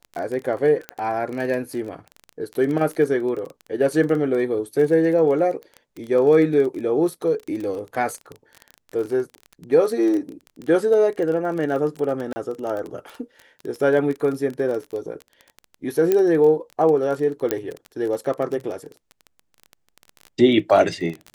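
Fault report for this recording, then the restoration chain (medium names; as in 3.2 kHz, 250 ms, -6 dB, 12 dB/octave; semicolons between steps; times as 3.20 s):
crackle 20 per s -27 dBFS
0.89 s: pop -14 dBFS
12.33–12.36 s: dropout 30 ms
16.12 s: pop -7 dBFS
17.51 s: pop -7 dBFS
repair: de-click; interpolate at 12.33 s, 30 ms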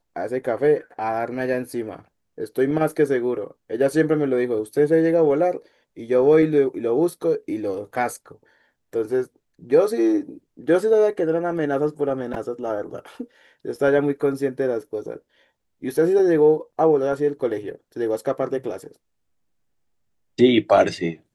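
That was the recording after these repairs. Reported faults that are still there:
16.12 s: pop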